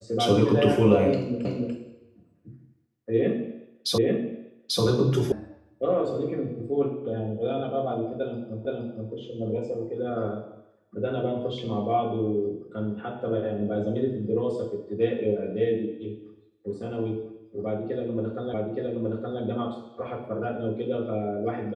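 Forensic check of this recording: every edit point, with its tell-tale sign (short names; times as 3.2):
1.45 repeat of the last 0.29 s
3.98 repeat of the last 0.84 s
5.32 sound cut off
8.65 repeat of the last 0.47 s
18.54 repeat of the last 0.87 s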